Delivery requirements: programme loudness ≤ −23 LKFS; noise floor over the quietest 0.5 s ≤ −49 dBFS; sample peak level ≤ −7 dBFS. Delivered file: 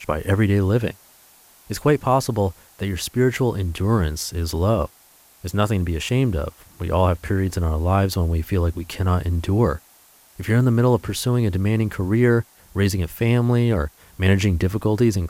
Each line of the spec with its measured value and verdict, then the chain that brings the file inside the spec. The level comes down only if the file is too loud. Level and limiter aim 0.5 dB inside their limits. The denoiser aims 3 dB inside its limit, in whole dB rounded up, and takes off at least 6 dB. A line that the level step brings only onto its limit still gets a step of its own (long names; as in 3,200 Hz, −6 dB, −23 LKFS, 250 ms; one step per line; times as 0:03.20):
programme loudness −21.0 LKFS: out of spec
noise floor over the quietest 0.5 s −53 dBFS: in spec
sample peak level −6.0 dBFS: out of spec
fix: level −2.5 dB